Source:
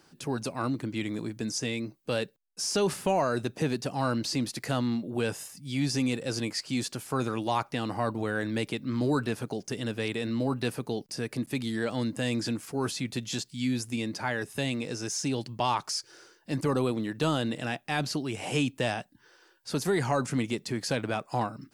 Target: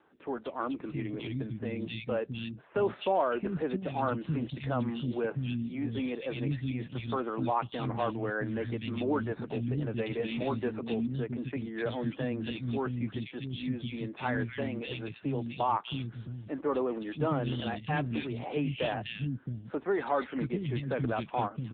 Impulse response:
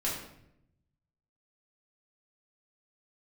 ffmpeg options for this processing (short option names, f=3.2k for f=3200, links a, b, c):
-filter_complex "[0:a]asettb=1/sr,asplit=3[a][b][c];[a]atrim=end=9.964[d];[b]atrim=start=9.96:end=10.72,asetpts=PTS-STARTPTS,afade=t=in:d=0.004:c=qsin,afade=t=out:st=0.756:d=0.004:c=qsin,asplit=2[e][f];[f]adelay=13,volume=-4.5dB[g];[e][g]amix=inputs=2:normalize=0,atrim=end_sample=33516[h];[c]atrim=start=10.716[i];[d][h]acrossfade=d=0.004:c1=hsin:c2=qsin[j];[j][i]acrossfade=d=0.004:c1=qsin:c2=hsin,acrossover=split=250|2200[k][l][m];[m]adelay=250[n];[k]adelay=670[o];[o][l][n]amix=inputs=3:normalize=0" -ar 8000 -c:a libopencore_amrnb -b:a 7950